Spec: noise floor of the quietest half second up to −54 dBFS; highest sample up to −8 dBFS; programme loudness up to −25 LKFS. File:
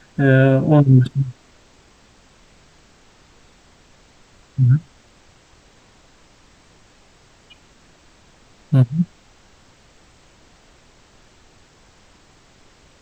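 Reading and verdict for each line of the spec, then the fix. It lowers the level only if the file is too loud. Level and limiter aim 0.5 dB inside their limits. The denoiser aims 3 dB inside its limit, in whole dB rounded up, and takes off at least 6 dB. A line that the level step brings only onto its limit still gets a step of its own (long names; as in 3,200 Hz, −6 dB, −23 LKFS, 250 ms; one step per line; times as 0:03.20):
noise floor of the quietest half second −52 dBFS: out of spec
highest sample −1.5 dBFS: out of spec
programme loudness −16.5 LKFS: out of spec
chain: level −9 dB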